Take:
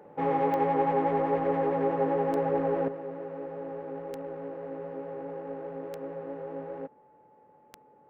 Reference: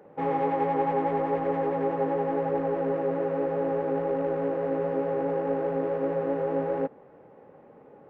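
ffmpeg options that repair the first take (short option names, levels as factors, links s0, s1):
-af "adeclick=t=4,bandreject=f=860:w=30,asetnsamples=n=441:p=0,asendcmd='2.88 volume volume 10.5dB',volume=1"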